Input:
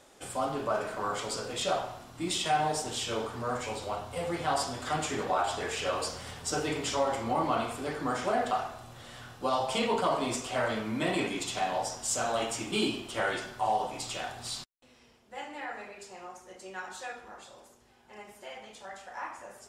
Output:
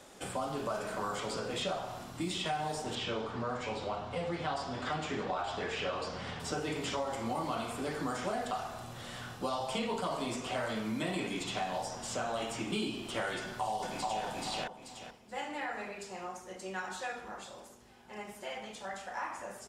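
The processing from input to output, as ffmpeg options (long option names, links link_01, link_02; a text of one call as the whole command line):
ffmpeg -i in.wav -filter_complex "[0:a]asettb=1/sr,asplit=3[link_01][link_02][link_03];[link_01]atrim=end=2.954[link_04];[link_02]atrim=start=2.95:end=6.4,asetpts=PTS-STARTPTS,afade=type=in:duration=0.004:curve=qsin,afade=type=out:start_time=3.446:duration=0.004:curve=qsin,lowpass=3800[link_05];[link_03]atrim=start=6.396[link_06];[link_04][link_05]acrossfade=duration=0.004:curve1=hsin:curve2=qsin[link_07];[link_07][link_06]acrossfade=duration=0.004:curve1=qsin:curve2=hsin,asplit=2[link_08][link_09];[link_09]afade=type=in:start_time=13.39:duration=0.01,afade=type=out:start_time=14.24:duration=0.01,aecho=0:1:430|860|1290:0.841395|0.168279|0.0336558[link_10];[link_08][link_10]amix=inputs=2:normalize=0,equalizer=frequency=190:width_type=o:width=0.43:gain=6,acrossover=split=100|3800[link_11][link_12][link_13];[link_11]acompressor=threshold=-58dB:ratio=4[link_14];[link_12]acompressor=threshold=-37dB:ratio=4[link_15];[link_13]acompressor=threshold=-51dB:ratio=4[link_16];[link_14][link_15][link_16]amix=inputs=3:normalize=0,volume=3dB" out.wav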